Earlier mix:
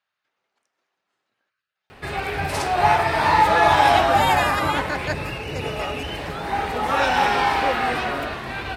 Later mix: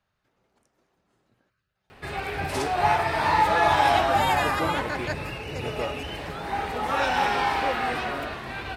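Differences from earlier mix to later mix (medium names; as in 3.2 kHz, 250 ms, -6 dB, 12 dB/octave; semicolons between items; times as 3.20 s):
speech: remove band-pass filter 2.7 kHz, Q 0.58; background -4.5 dB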